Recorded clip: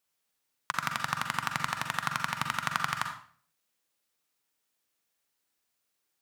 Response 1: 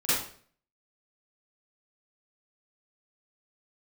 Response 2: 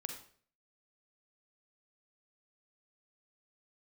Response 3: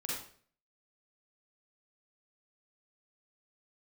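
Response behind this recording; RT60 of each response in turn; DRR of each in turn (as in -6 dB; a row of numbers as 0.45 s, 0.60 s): 2; 0.50 s, 0.50 s, 0.50 s; -15.5 dB, 4.0 dB, -5.5 dB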